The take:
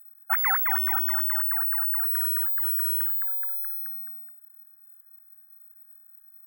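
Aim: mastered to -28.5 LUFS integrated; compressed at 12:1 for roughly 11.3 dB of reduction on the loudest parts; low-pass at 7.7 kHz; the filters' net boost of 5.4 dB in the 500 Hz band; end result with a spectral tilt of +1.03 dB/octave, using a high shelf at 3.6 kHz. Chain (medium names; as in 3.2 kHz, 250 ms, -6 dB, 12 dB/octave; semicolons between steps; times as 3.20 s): low-pass 7.7 kHz; peaking EQ 500 Hz +8 dB; treble shelf 3.6 kHz -7 dB; compression 12:1, threshold -33 dBFS; trim +11.5 dB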